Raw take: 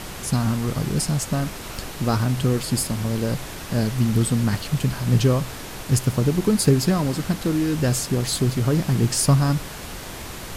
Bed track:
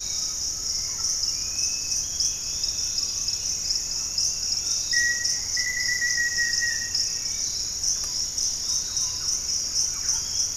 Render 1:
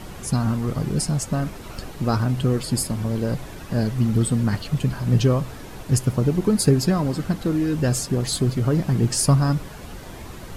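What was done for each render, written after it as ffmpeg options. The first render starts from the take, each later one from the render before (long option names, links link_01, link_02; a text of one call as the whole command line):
ffmpeg -i in.wav -af "afftdn=noise_reduction=9:noise_floor=-35" out.wav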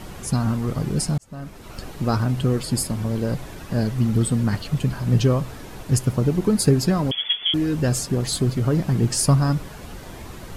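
ffmpeg -i in.wav -filter_complex "[0:a]asettb=1/sr,asplit=3[link_01][link_02][link_03];[link_01]atrim=end=7.114[link_04];[link_02]atrim=start=7.11:end=7.54,asetpts=PTS-STARTPTS,afade=type=in:duration=0.004:curve=qsin,afade=type=out:start_time=0.426:duration=0.004:curve=qsin,lowpass=frequency=3000:width_type=q:width=0.5098,lowpass=frequency=3000:width_type=q:width=0.6013,lowpass=frequency=3000:width_type=q:width=0.9,lowpass=frequency=3000:width_type=q:width=2.563,afreqshift=-3500[link_05];[link_03]atrim=start=7.536[link_06];[link_04][link_05]acrossfade=duration=0.004:curve1=hsin:curve2=qsin[link_07];[link_07][link_06]acrossfade=duration=0.004:curve1=qsin:curve2=hsin,asplit=2[link_08][link_09];[link_08]atrim=end=1.18,asetpts=PTS-STARTPTS,afade=type=out:start_time=1.176:duration=0.004:curve=hsin[link_10];[link_09]atrim=start=1.18,asetpts=PTS-STARTPTS,afade=type=in:duration=0.71[link_11];[link_10][link_11]concat=n=2:v=0:a=1" out.wav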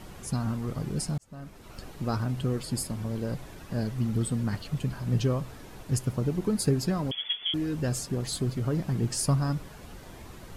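ffmpeg -i in.wav -af "volume=-8dB" out.wav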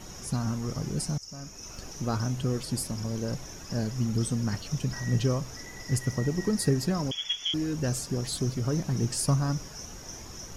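ffmpeg -i in.wav -i bed.wav -filter_complex "[1:a]volume=-19.5dB[link_01];[0:a][link_01]amix=inputs=2:normalize=0" out.wav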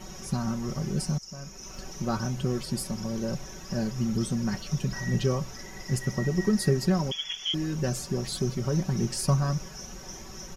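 ffmpeg -i in.wav -af "equalizer=frequency=8800:width_type=o:width=1.1:gain=-4.5,aecho=1:1:5.3:0.65" out.wav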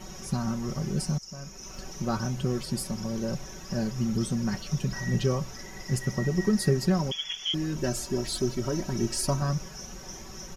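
ffmpeg -i in.wav -filter_complex "[0:a]asettb=1/sr,asplit=3[link_01][link_02][link_03];[link_01]atrim=end=7.764[link_04];[link_02]atrim=start=7.76:end=9.42,asetpts=PTS-STARTPTS,afade=type=in:duration=0.004:curve=qsin,afade=type=out:start_time=1.656:duration=0.004:curve=qsin,aecho=1:1:3.1:0.65,atrim=end_sample=73206[link_05];[link_03]atrim=start=9.416[link_06];[link_04][link_05]acrossfade=duration=0.004:curve1=hsin:curve2=qsin[link_07];[link_07][link_06]acrossfade=duration=0.004:curve1=qsin:curve2=hsin" out.wav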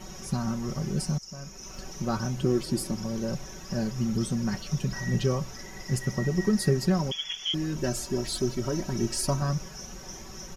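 ffmpeg -i in.wav -filter_complex "[0:a]asettb=1/sr,asplit=3[link_01][link_02][link_03];[link_01]atrim=end=2.424[link_04];[link_02]atrim=start=2.42:end=2.95,asetpts=PTS-STARTPTS,afade=type=in:duration=0.004:curve=qsin,afade=type=out:start_time=0.526:duration=0.004:curve=qsin,equalizer=frequency=320:width_type=o:width=0.46:gain=12[link_05];[link_03]atrim=start=2.946[link_06];[link_04][link_05]acrossfade=duration=0.004:curve1=hsin:curve2=qsin[link_07];[link_07][link_06]acrossfade=duration=0.004:curve1=qsin:curve2=hsin" out.wav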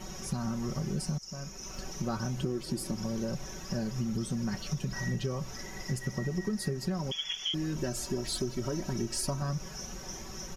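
ffmpeg -i in.wav -af "acompressor=threshold=-29dB:ratio=6" out.wav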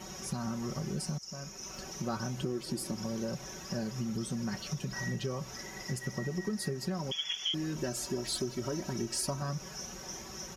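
ffmpeg -i in.wav -af "highpass=49,lowshelf=frequency=210:gain=-5" out.wav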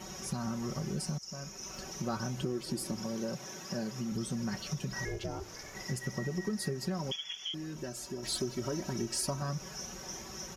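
ffmpeg -i in.wav -filter_complex "[0:a]asettb=1/sr,asplit=3[link_01][link_02][link_03];[link_01]atrim=end=3.004[link_04];[link_02]atrim=start=3:end=4.12,asetpts=PTS-STARTPTS,afade=type=in:duration=0.004:curve=qsin,afade=type=out:start_time=1.116:duration=0.004:curve=qsin,highpass=140[link_05];[link_03]atrim=start=4.116[link_06];[link_04][link_05]acrossfade=duration=0.004:curve1=hsin:curve2=qsin[link_07];[link_07][link_06]acrossfade=duration=0.004:curve1=qsin:curve2=hsin,asettb=1/sr,asplit=3[link_08][link_09][link_10];[link_08]atrim=end=5.054[link_11];[link_09]atrim=start=5.05:end=5.75,asetpts=PTS-STARTPTS,afade=type=in:duration=0.004:curve=qsin,afade=type=out:start_time=0.696:duration=0.004:curve=qsin,aeval=exprs='val(0)*sin(2*PI*230*n/s)':channel_layout=same[link_12];[link_10]atrim=start=5.746[link_13];[link_11][link_12]acrossfade=duration=0.004:curve1=hsin:curve2=qsin[link_14];[link_14][link_13]acrossfade=duration=0.004:curve1=qsin:curve2=hsin,asplit=3[link_15][link_16][link_17];[link_15]atrim=end=7.162[link_18];[link_16]atrim=start=7.158:end=8.232,asetpts=PTS-STARTPTS,volume=-5.5dB[link_19];[link_17]atrim=start=8.228[link_20];[link_18][link_19]acrossfade=duration=0.004:curve1=hsin:curve2=hsin[link_21];[link_21][link_20]acrossfade=duration=0.004:curve1=hsin:curve2=hsin" out.wav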